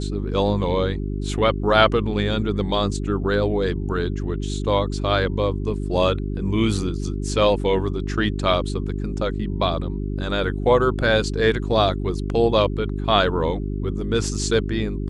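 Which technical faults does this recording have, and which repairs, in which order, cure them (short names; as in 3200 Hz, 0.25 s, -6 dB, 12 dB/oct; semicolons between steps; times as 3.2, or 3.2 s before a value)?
hum 50 Hz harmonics 8 -26 dBFS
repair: de-hum 50 Hz, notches 8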